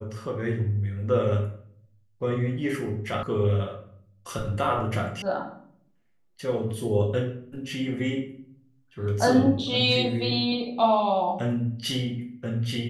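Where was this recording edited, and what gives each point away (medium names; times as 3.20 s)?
3.23 s: sound stops dead
5.22 s: sound stops dead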